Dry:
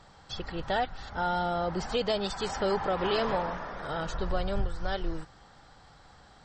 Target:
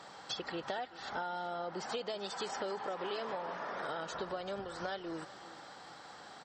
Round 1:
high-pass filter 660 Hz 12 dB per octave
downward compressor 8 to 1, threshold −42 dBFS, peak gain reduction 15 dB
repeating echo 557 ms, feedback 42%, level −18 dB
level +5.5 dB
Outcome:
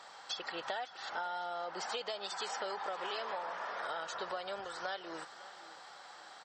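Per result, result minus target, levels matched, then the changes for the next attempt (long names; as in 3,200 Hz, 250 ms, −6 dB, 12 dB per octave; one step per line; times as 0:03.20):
echo 176 ms late; 250 Hz band −8.0 dB
change: repeating echo 381 ms, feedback 42%, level −18 dB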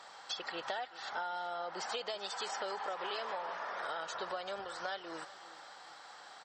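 250 Hz band −8.0 dB
change: high-pass filter 270 Hz 12 dB per octave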